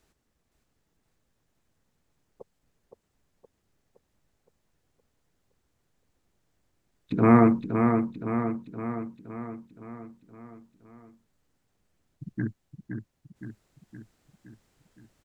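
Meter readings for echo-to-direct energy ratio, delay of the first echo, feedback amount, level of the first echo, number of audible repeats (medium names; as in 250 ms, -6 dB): -4.5 dB, 517 ms, 57%, -6.0 dB, 6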